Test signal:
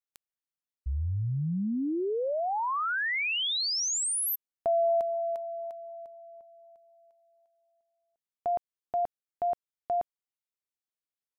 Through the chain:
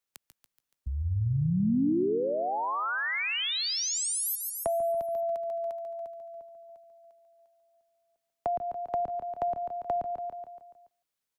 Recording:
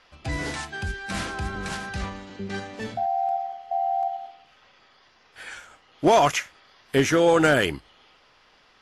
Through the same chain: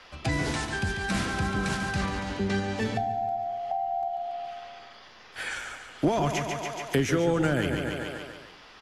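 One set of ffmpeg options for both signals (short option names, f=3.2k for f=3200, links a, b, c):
-filter_complex "[0:a]asplit=2[a][b];[b]aecho=0:1:142|284|426|568|710|852:0.355|0.185|0.0959|0.0499|0.0259|0.0135[c];[a][c]amix=inputs=2:normalize=0,acrossover=split=110|280[d][e][f];[d]acompressor=threshold=-44dB:ratio=4[g];[e]acompressor=threshold=-35dB:ratio=4[h];[f]acompressor=threshold=-37dB:ratio=4[i];[g][h][i]amix=inputs=3:normalize=0,asplit=2[j][k];[k]aecho=0:1:159:0.0631[l];[j][l]amix=inputs=2:normalize=0,volume=7dB"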